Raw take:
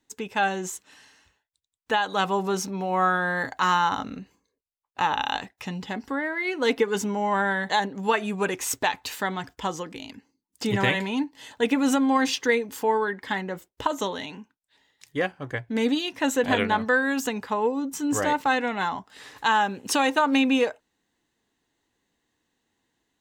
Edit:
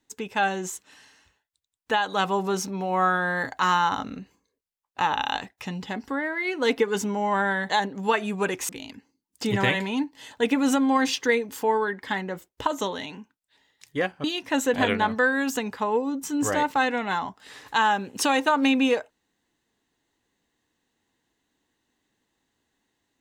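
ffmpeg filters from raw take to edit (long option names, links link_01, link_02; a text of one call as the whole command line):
ffmpeg -i in.wav -filter_complex "[0:a]asplit=3[link_01][link_02][link_03];[link_01]atrim=end=8.692[link_04];[link_02]atrim=start=9.888:end=15.442[link_05];[link_03]atrim=start=15.938[link_06];[link_04][link_05]acrossfade=duration=0.004:curve1=hsin:curve2=hsin[link_07];[link_07][link_06]acrossfade=duration=0.004:curve1=hsin:curve2=hsin" out.wav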